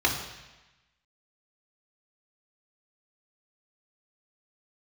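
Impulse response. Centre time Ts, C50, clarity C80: 31 ms, 6.5 dB, 8.5 dB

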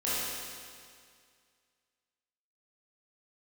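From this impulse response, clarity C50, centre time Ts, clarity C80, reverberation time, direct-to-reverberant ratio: -4.5 dB, 153 ms, -1.5 dB, 2.1 s, -11.0 dB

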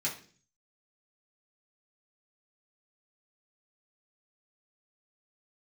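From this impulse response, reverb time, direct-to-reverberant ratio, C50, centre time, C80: 0.45 s, -7.0 dB, 10.0 dB, 20 ms, 14.5 dB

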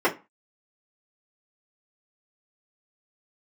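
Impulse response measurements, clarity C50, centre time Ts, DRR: 15.5 dB, 13 ms, -6.5 dB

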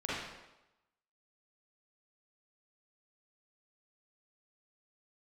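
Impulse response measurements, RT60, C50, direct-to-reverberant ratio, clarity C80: 1.0 s, -4.0 dB, -9.0 dB, 1.5 dB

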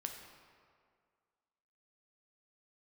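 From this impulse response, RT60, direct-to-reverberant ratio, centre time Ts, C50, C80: 2.0 s, 3.0 dB, 46 ms, 5.0 dB, 6.5 dB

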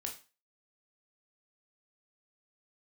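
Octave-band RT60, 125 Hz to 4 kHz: 0.30 s, 0.35 s, 0.30 s, 0.35 s, 0.35 s, 0.30 s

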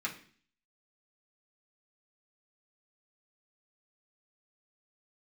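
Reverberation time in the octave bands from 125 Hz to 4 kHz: 0.60 s, 0.60 s, 0.50 s, 0.45 s, 0.50 s, 0.55 s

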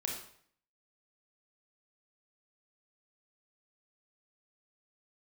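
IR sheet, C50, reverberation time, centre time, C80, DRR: 3.5 dB, 0.60 s, 37 ms, 7.5 dB, -0.5 dB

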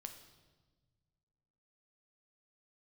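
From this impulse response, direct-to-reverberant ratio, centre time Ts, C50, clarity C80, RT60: 5.5 dB, 17 ms, 9.0 dB, 11.0 dB, 1.4 s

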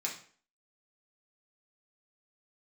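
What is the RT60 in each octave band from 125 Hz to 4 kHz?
0.40 s, 0.50 s, 0.50 s, 0.45 s, 0.45 s, 0.40 s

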